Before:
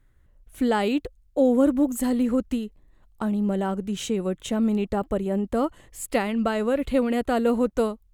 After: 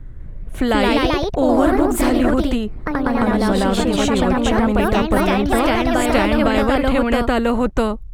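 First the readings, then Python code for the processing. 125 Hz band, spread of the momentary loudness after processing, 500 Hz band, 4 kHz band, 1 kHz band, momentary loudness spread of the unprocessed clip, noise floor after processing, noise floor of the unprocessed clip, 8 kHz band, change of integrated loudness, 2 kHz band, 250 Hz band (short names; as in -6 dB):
+10.0 dB, 4 LU, +7.0 dB, +12.5 dB, +11.0 dB, 8 LU, -31 dBFS, -60 dBFS, +7.0 dB, +7.5 dB, +13.0 dB, +6.5 dB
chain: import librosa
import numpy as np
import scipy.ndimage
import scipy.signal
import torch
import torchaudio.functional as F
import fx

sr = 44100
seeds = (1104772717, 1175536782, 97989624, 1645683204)

y = fx.tilt_eq(x, sr, slope=-4.0)
y = fx.echo_pitch(y, sr, ms=199, semitones=2, count=3, db_per_echo=-3.0)
y = fx.spectral_comp(y, sr, ratio=2.0)
y = y * librosa.db_to_amplitude(-2.5)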